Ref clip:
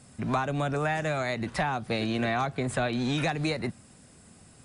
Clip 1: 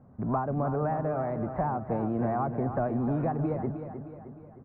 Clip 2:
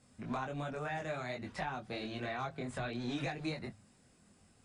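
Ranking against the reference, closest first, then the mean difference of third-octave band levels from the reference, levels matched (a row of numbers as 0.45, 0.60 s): 2, 1; 2.0, 11.0 dB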